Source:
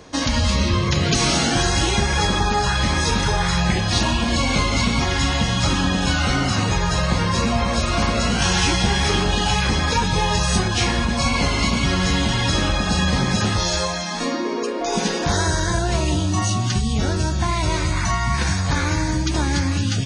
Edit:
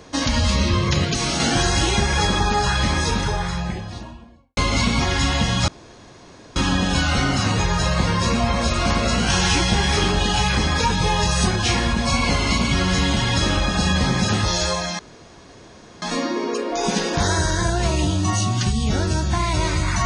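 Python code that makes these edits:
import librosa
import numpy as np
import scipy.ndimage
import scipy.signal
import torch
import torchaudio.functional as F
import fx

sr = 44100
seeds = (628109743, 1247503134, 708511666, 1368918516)

y = fx.studio_fade_out(x, sr, start_s=2.73, length_s=1.84)
y = fx.edit(y, sr, fx.clip_gain(start_s=1.05, length_s=0.35, db=-4.0),
    fx.insert_room_tone(at_s=5.68, length_s=0.88),
    fx.insert_room_tone(at_s=14.11, length_s=1.03), tone=tone)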